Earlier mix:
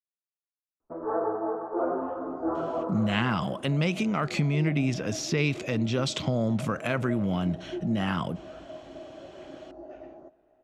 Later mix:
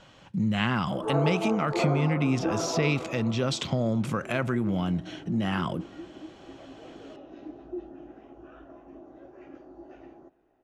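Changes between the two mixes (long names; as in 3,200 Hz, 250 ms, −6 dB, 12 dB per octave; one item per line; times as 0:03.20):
speech: entry −2.55 s
second sound: add parametric band 620 Hz −14 dB 0.23 octaves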